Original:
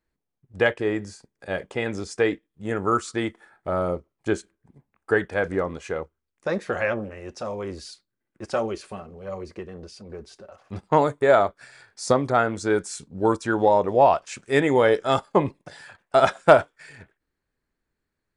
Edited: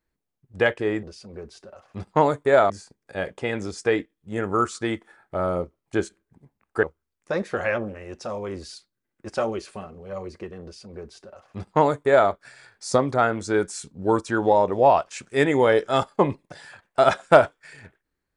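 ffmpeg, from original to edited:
-filter_complex "[0:a]asplit=4[s0][s1][s2][s3];[s0]atrim=end=1.032[s4];[s1]atrim=start=9.788:end=11.462[s5];[s2]atrim=start=1.028:end=5.162[s6];[s3]atrim=start=5.988[s7];[s4][s5]acrossfade=d=0.004:c1=hsin:c2=hsin[s8];[s8][s6]acrossfade=d=0.004:c1=hsin:c2=hsin[s9];[s9][s7]acrossfade=d=0.004:c1=hsin:c2=hsin"

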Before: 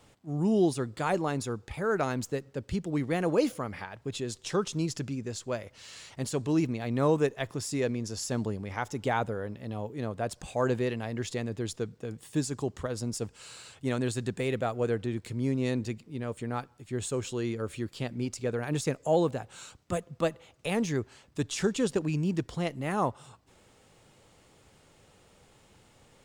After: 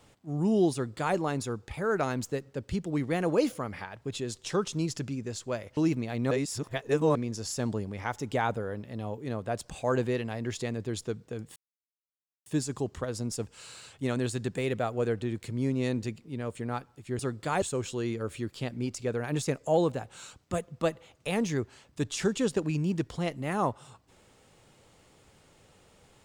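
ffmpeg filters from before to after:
-filter_complex "[0:a]asplit=7[s0][s1][s2][s3][s4][s5][s6];[s0]atrim=end=5.772[s7];[s1]atrim=start=6.488:end=7.032[s8];[s2]atrim=start=7.028:end=7.872,asetpts=PTS-STARTPTS,areverse[s9];[s3]atrim=start=7.868:end=12.28,asetpts=PTS-STARTPTS,afade=t=out:st=4.408:d=0.004:c=hsin,apad=pad_dur=0.9[s10];[s4]atrim=start=12.28:end=17.012,asetpts=PTS-STARTPTS,afade=t=in:d=0.004:c=hsin[s11];[s5]atrim=start=0.728:end=1.162[s12];[s6]atrim=start=17.008[s13];[s7][s8]acrossfade=d=0.004:c1=hsin:c2=hsin[s14];[s14][s9]acrossfade=d=0.004:c1=hsin:c2=hsin[s15];[s10][s11]concat=n=2:v=0:a=1[s16];[s15][s16]acrossfade=d=0.004:c1=hsin:c2=hsin[s17];[s17][s12]acrossfade=d=0.004:c1=hsin:c2=hsin[s18];[s18][s13]acrossfade=d=0.004:c1=hsin:c2=hsin"

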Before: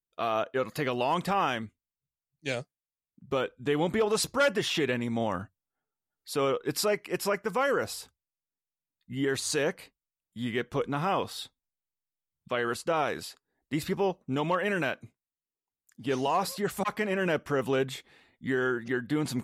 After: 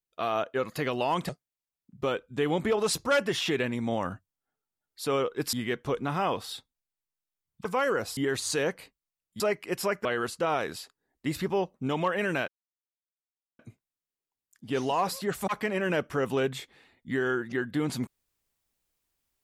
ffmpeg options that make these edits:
-filter_complex "[0:a]asplit=8[s0][s1][s2][s3][s4][s5][s6][s7];[s0]atrim=end=1.292[s8];[s1]atrim=start=2.578:end=6.822[s9];[s2]atrim=start=10.398:end=12.522[s10];[s3]atrim=start=7.468:end=7.992[s11];[s4]atrim=start=9.168:end=10.402[s12];[s5]atrim=start=6.818:end=7.472[s13];[s6]atrim=start=12.518:end=14.95,asetpts=PTS-STARTPTS,afade=t=out:st=2.428:d=0.004:c=hsin,apad=pad_dur=1.11[s14];[s7]atrim=start=14.95,asetpts=PTS-STARTPTS,afade=t=in:d=0.004:c=hsin[s15];[s8][s9]acrossfade=d=0.004:c1=hsin:c2=hsin[s16];[s16][s10]acrossfade=d=0.004:c1=hsin:c2=hsin[s17];[s17][s11]acrossfade=d=0.004:c1=hsin:c2=hsin[s18];[s18][s12]acrossfade=d=0.004:c1=hsin:c2=hsin[s19];[s19][s13]acrossfade=d=0.004:c1=hsin:c2=hsin[s20];[s14][s15]concat=n=2:v=0:a=1[s21];[s20][s21]acrossfade=d=0.004:c1=hsin:c2=hsin"

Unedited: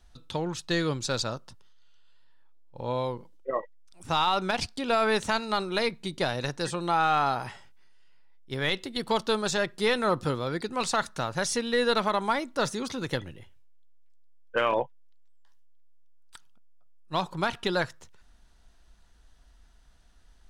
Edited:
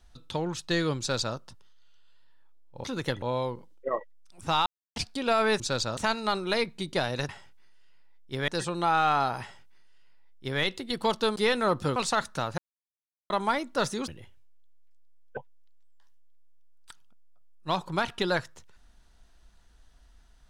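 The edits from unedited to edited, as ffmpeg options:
-filter_complex "[0:a]asplit=15[s0][s1][s2][s3][s4][s5][s6][s7][s8][s9][s10][s11][s12][s13][s14];[s0]atrim=end=2.842[s15];[s1]atrim=start=12.888:end=13.272[s16];[s2]atrim=start=2.838:end=4.28,asetpts=PTS-STARTPTS,afade=t=out:st=1.438:d=0.004:c=hsin[s17];[s3]atrim=start=4.28:end=4.58,asetpts=PTS-STARTPTS,volume=0[s18];[s4]atrim=start=4.58:end=5.222,asetpts=PTS-STARTPTS,afade=t=in:d=0.004:c=hsin[s19];[s5]atrim=start=0.988:end=1.362[s20];[s6]atrim=start=5.218:end=6.542[s21];[s7]atrim=start=7.478:end=8.672[s22];[s8]atrim=start=6.538:end=9.422[s23];[s9]atrim=start=9.768:end=10.372[s24];[s10]atrim=start=10.768:end=11.39,asetpts=PTS-STARTPTS,afade=t=out:st=0.618:d=0.004:c=hsin[s25];[s11]atrim=start=11.39:end=12.11,asetpts=PTS-STARTPTS,volume=0[s26];[s12]atrim=start=12.11:end=12.892,asetpts=PTS-STARTPTS,afade=t=in:d=0.004:c=hsin[s27];[s13]atrim=start=13.268:end=14.562[s28];[s14]atrim=start=14.818[s29];[s15][s16]acrossfade=d=0.004:c1=hsin:c2=hsin[s30];[s17][s18][s19]concat=n=3:v=0:a=1[s31];[s30][s31]acrossfade=d=0.004:c1=hsin:c2=hsin[s32];[s32][s20]acrossfade=d=0.004:c1=hsin:c2=hsin[s33];[s33][s21]acrossfade=d=0.004:c1=hsin:c2=hsin[s34];[s34][s22]acrossfade=d=0.004:c1=hsin:c2=hsin[s35];[s35][s23]acrossfade=d=0.004:c1=hsin:c2=hsin[s36];[s36][s24]acrossfade=d=0.004:c1=hsin:c2=hsin[s37];[s25][s26][s27]concat=n=3:v=0:a=1[s38];[s37][s38]acrossfade=d=0.004:c1=hsin:c2=hsin[s39];[s39][s28]acrossfade=d=0.004:c1=hsin:c2=hsin[s40];[s40][s29]acrossfade=d=0.004:c1=hsin:c2=hsin"

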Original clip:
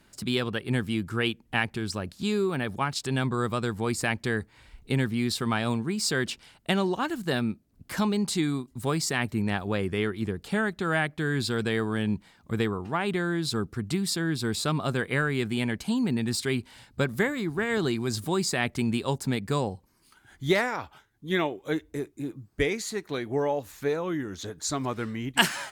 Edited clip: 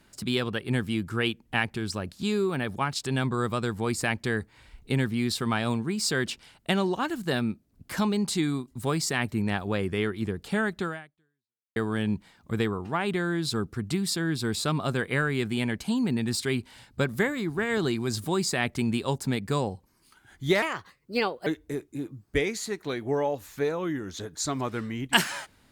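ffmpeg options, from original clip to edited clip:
-filter_complex "[0:a]asplit=4[s0][s1][s2][s3];[s0]atrim=end=11.76,asetpts=PTS-STARTPTS,afade=t=out:st=10.84:d=0.92:c=exp[s4];[s1]atrim=start=11.76:end=20.624,asetpts=PTS-STARTPTS,afade=t=in:d=0.004:c=hsin[s5];[s2]atrim=start=20.62:end=21.71,asetpts=PTS-STARTPTS,asetrate=56889,aresample=44100[s6];[s3]atrim=start=21.706[s7];[s4][s5]concat=n=2:v=0:a=1[s8];[s8][s6]acrossfade=d=0.004:c1=hsin:c2=hsin[s9];[s9][s7]acrossfade=d=0.004:c1=hsin:c2=hsin"

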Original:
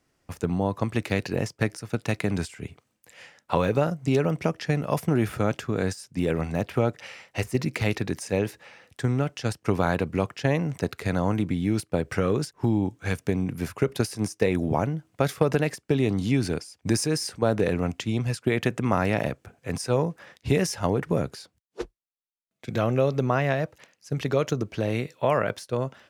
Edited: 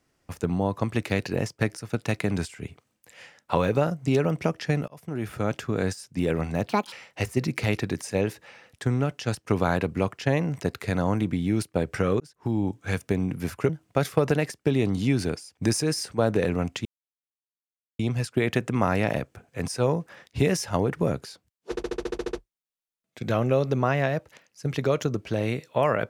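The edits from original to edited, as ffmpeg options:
-filter_complex "[0:a]asplit=16[s0][s1][s2][s3][s4][s5][s6][s7][s8][s9][s10][s11][s12][s13][s14][s15];[s0]atrim=end=4.88,asetpts=PTS-STARTPTS,afade=t=out:st=4.876:d=0.004:c=hsin[s16];[s1]atrim=start=4.88:end=6.694,asetpts=PTS-STARTPTS,afade=t=in:d=0.74[s17];[s2]atrim=start=6.69:end=7.1,asetpts=PTS-STARTPTS,asetrate=78057,aresample=44100,atrim=end_sample=10215,asetpts=PTS-STARTPTS[s18];[s3]atrim=start=7.096:end=12.38,asetpts=PTS-STARTPTS,afade=t=out:st=5.28:d=0.004:c=hsin[s19];[s4]atrim=start=12.38:end=13.872,asetpts=PTS-STARTPTS,afade=t=in:d=0.65:c=qsin[s20];[s5]atrim=start=14.928:end=18.09,asetpts=PTS-STARTPTS,afade=t=out:st=3.158:d=0.004:c=hsin,apad=pad_dur=1.14[s21];[s6]atrim=start=18.09:end=21.872,asetpts=PTS-STARTPTS,afade=t=in:d=0.004:c=hsin[s22];[s7]atrim=start=21.798:end=21.872[s23];[s8]atrim=start=21.798:end=21.872[s24];[s9]atrim=start=21.798:end=21.872[s25];[s10]atrim=start=21.798:end=21.872[s26];[s11]atrim=start=21.798:end=21.872[s27];[s12]atrim=start=21.798:end=21.872[s28];[s13]atrim=start=21.798:end=21.872[s29];[s14]atrim=start=21.798:end=21.872[s30];[s15]atrim=start=21.798[s31];[s16][s17]concat=n=2:v=0:a=1[s32];[s32][s18]acrossfade=d=0.004:c1=hsin:c2=hsin[s33];[s19][s20]concat=n=2:v=0:a=1[s34];[s33][s34]acrossfade=d=0.004:c1=hsin:c2=hsin[s35];[s21][s22]concat=n=2:v=0:a=1[s36];[s35][s36]acrossfade=d=0.004:c1=hsin:c2=hsin[s37];[s37][s23]acrossfade=d=0.004:c1=hsin:c2=hsin[s38];[s38][s24]acrossfade=d=0.004:c1=hsin:c2=hsin[s39];[s39][s25]acrossfade=d=0.004:c1=hsin:c2=hsin[s40];[s40][s26]acrossfade=d=0.004:c1=hsin:c2=hsin[s41];[s41][s27]acrossfade=d=0.004:c1=hsin:c2=hsin[s42];[s42][s28]acrossfade=d=0.004:c1=hsin:c2=hsin[s43];[s43][s29]acrossfade=d=0.004:c1=hsin:c2=hsin[s44];[s44][s30]acrossfade=d=0.004:c1=hsin:c2=hsin[s45];[s45][s31]acrossfade=d=0.004:c1=hsin:c2=hsin"

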